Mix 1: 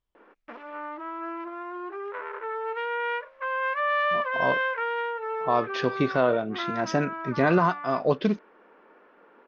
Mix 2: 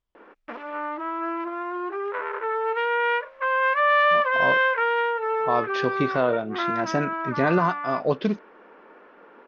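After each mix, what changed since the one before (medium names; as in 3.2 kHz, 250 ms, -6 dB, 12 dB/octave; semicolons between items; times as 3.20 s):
background +6.0 dB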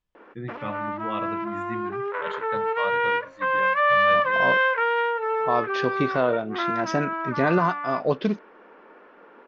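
first voice: unmuted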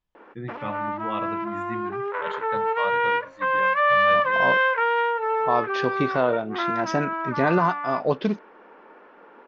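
master: add peaking EQ 860 Hz +4 dB 0.34 oct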